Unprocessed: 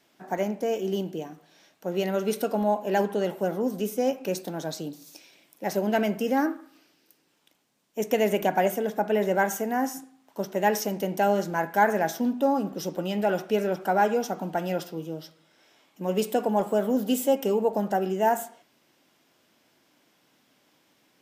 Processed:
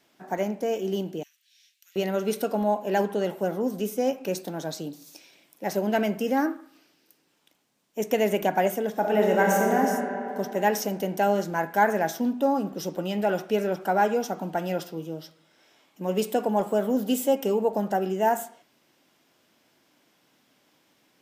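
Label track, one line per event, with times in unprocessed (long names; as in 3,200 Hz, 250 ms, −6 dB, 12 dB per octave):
1.230000	1.960000	inverse Chebyshev high-pass filter stop band from 710 Hz, stop band 60 dB
8.900000	9.790000	thrown reverb, RT60 3 s, DRR −1 dB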